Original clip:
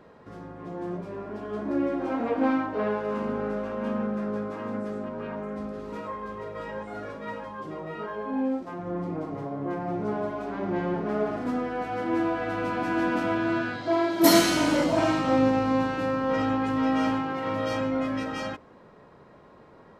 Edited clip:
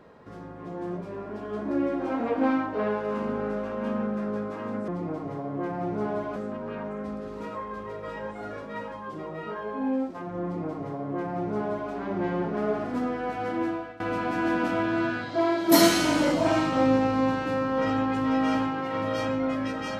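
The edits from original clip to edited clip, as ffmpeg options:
-filter_complex "[0:a]asplit=4[a][b][c][d];[a]atrim=end=4.882[e];[b]atrim=start=8.948:end=10.432[f];[c]atrim=start=4.878:end=12.52,asetpts=PTS-STARTPTS,afade=t=out:st=7.162:d=0.48:silence=0.0841395[g];[d]atrim=start=12.52,asetpts=PTS-STARTPTS,afade=t=in:d=0.004:c=hsin:silence=0.0841395[h];[e][f]acrossfade=d=0.004:c1=hsin:c2=hsin[i];[g][h]concat=n=2:v=0:a=1[j];[i][j]acrossfade=d=0.004:c1=hsin:c2=hsin"

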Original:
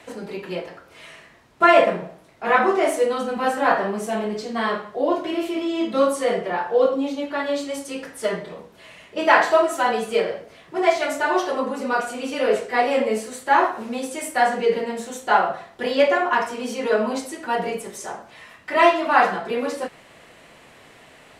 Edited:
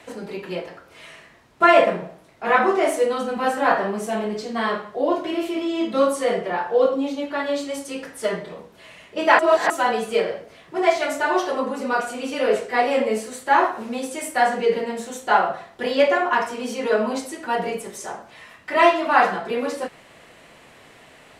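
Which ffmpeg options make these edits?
-filter_complex "[0:a]asplit=3[a][b][c];[a]atrim=end=9.392[d];[b]atrim=start=9.388:end=9.702,asetpts=PTS-STARTPTS,areverse[e];[c]atrim=start=9.698[f];[d][e]acrossfade=d=0.004:c1=hsin:c2=hsin[g];[g][f]acrossfade=d=0.004:c1=hsin:c2=hsin"

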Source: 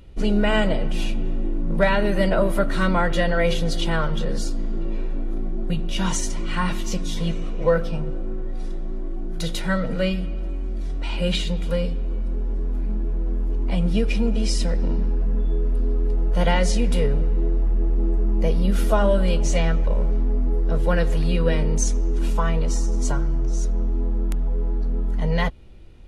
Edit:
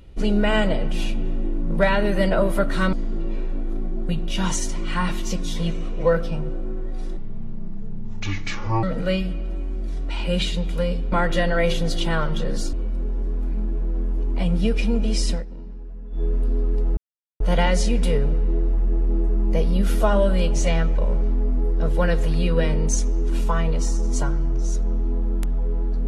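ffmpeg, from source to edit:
-filter_complex "[0:a]asplit=9[a][b][c][d][e][f][g][h][i];[a]atrim=end=2.932[j];[b]atrim=start=4.538:end=8.784[k];[c]atrim=start=8.78:end=9.76,asetpts=PTS-STARTPTS,asetrate=26019,aresample=44100[l];[d]atrim=start=9.756:end=12.052[m];[e]atrim=start=2.928:end=4.542[n];[f]atrim=start=12.048:end=14.77,asetpts=PTS-STARTPTS,afade=t=out:st=2.582:d=0.14:silence=0.188365[o];[g]atrim=start=14.77:end=15.42,asetpts=PTS-STARTPTS,volume=-14.5dB[p];[h]atrim=start=15.42:end=16.29,asetpts=PTS-STARTPTS,afade=t=in:d=0.14:silence=0.188365,afade=t=out:st=0.866:d=0.004:c=hsin,apad=pad_dur=0.43[q];[i]atrim=start=16.29,asetpts=PTS-STARTPTS,afade=t=in:d=0.004:c=hsin[r];[j][k]acrossfade=d=0.004:c1=hsin:c2=hsin[s];[s][l]acrossfade=d=0.004:c1=hsin:c2=hsin[t];[t][m]acrossfade=d=0.004:c1=hsin:c2=hsin[u];[u][n]acrossfade=d=0.004:c1=hsin:c2=hsin[v];[o][p][q][r]concat=n=4:v=0:a=1[w];[v][w]acrossfade=d=0.004:c1=hsin:c2=hsin"

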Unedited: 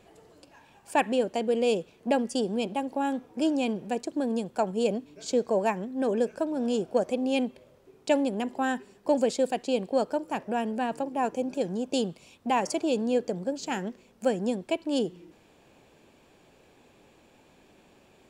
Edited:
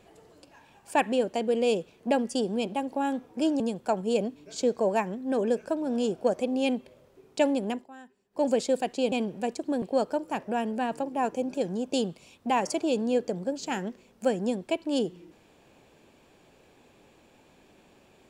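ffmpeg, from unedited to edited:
-filter_complex "[0:a]asplit=6[a][b][c][d][e][f];[a]atrim=end=3.602[g];[b]atrim=start=4.298:end=8.57,asetpts=PTS-STARTPTS,afade=t=out:st=4.112:d=0.16:silence=0.105925[h];[c]atrim=start=8.57:end=9,asetpts=PTS-STARTPTS,volume=-19.5dB[i];[d]atrim=start=9:end=9.822,asetpts=PTS-STARTPTS,afade=t=in:d=0.16:silence=0.105925[j];[e]atrim=start=3.598:end=4.302[k];[f]atrim=start=9.818[l];[h][i][j]concat=n=3:v=0:a=1[m];[g][m]acrossfade=d=0.004:c1=hsin:c2=hsin[n];[n][k]acrossfade=d=0.004:c1=hsin:c2=hsin[o];[o][l]acrossfade=d=0.004:c1=hsin:c2=hsin"

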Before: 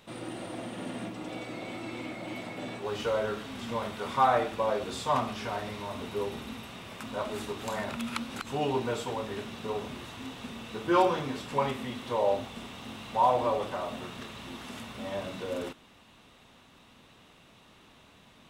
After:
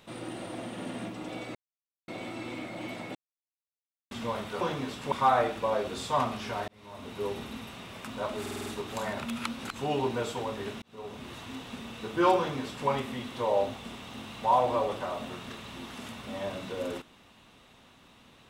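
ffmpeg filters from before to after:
-filter_complex "[0:a]asplit=13[a][b][c][d][e][f][g][h][i][j][k][l][m];[a]atrim=end=1.55,asetpts=PTS-STARTPTS,afade=t=out:st=1.546:d=0.004:c=hsin,apad=pad_dur=0.53[n];[b]atrim=start=1.55:end=2.62,asetpts=PTS-STARTPTS,afade=t=in:d=0.004:c=hsin,afade=t=out:st=1.066:d=0.004:c=hsin[o];[c]atrim=start=2.62:end=3.58,asetpts=PTS-STARTPTS,volume=0[p];[d]atrim=start=3.58:end=4.082,asetpts=PTS-STARTPTS,afade=t=in:d=0.004:c=hsin[q];[e]atrim=start=11.078:end=11.592[r];[f]atrim=start=4.078:end=5.64,asetpts=PTS-STARTPTS,afade=t=out:st=1.558:d=0.004:c=hsin[s];[g]atrim=start=5.64:end=7.422,asetpts=PTS-STARTPTS,afade=t=in:d=0.62[t];[h]atrim=start=7.368:end=7.422[u];[i]atrim=start=7.368:end=7.422[v];[j]atrim=start=7.368:end=7.422[w];[k]atrim=start=7.368:end=7.422[x];[l]atrim=start=7.368:end=9.53,asetpts=PTS-STARTPTS,afade=t=out:st=2.158:d=0.004:c=hsin[y];[m]atrim=start=9.53,asetpts=PTS-STARTPTS,afade=t=in:d=0.54[z];[n][o][p][q]concat=n=4:v=0:a=1[aa];[aa][r]acrossfade=d=0.004:c1=hsin:c2=hsin[ab];[s][t]concat=n=2:v=0:a=1[ac];[ab][ac]acrossfade=d=0.004:c1=hsin:c2=hsin[ad];[ad][u]acrossfade=d=0.004:c1=hsin:c2=hsin[ae];[ae][v]acrossfade=d=0.004:c1=hsin:c2=hsin[af];[af][w]acrossfade=d=0.004:c1=hsin:c2=hsin[ag];[ag][x]acrossfade=d=0.004:c1=hsin:c2=hsin[ah];[y][z]concat=n=2:v=0:a=1[ai];[ah][ai]acrossfade=d=0.004:c1=hsin:c2=hsin"

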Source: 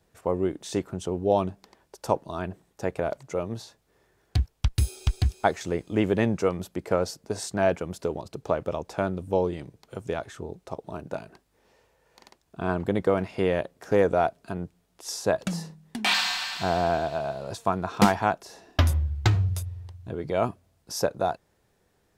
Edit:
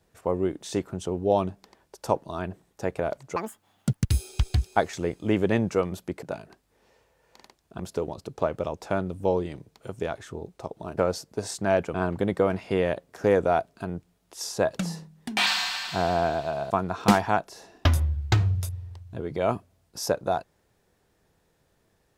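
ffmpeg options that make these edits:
-filter_complex "[0:a]asplit=8[a][b][c][d][e][f][g][h];[a]atrim=end=3.364[i];[b]atrim=start=3.36:end=4.77,asetpts=PTS-STARTPTS,asetrate=84672,aresample=44100[j];[c]atrim=start=4.766:end=6.902[k];[d]atrim=start=11.048:end=12.622[l];[e]atrim=start=7.868:end=11.052[m];[f]atrim=start=6.898:end=7.872[n];[g]atrim=start=12.618:end=17.382[o];[h]atrim=start=17.638[p];[i][j]acrossfade=d=0.004:c1=hsin:c2=hsin[q];[q][k]acrossfade=d=0.004:c1=hsin:c2=hsin[r];[r][l]acrossfade=d=0.004:c1=hsin:c2=hsin[s];[s][m]acrossfade=d=0.004:c1=hsin:c2=hsin[t];[t][n]acrossfade=d=0.004:c1=hsin:c2=hsin[u];[u][o]acrossfade=d=0.004:c1=hsin:c2=hsin[v];[v][p]acrossfade=d=0.004:c1=hsin:c2=hsin"

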